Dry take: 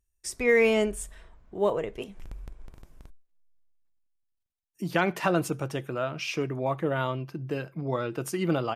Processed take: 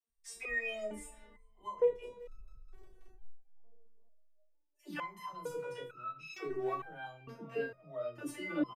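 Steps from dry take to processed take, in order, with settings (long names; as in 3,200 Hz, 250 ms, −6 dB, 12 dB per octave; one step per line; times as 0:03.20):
high-shelf EQ 2,900 Hz −8.5 dB
hum removal 62.48 Hz, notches 30
0:06.33–0:06.74: leveller curve on the samples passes 1
in parallel at +0.5 dB: brickwall limiter −20 dBFS, peak gain reduction 7 dB
on the sum: double-tracking delay 33 ms −6 dB
all-pass dispersion lows, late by 102 ms, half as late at 360 Hz
tape delay 387 ms, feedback 61%, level −21 dB, low-pass 1,600 Hz
step-sequenced resonator 2.2 Hz 230–1,300 Hz
level +2 dB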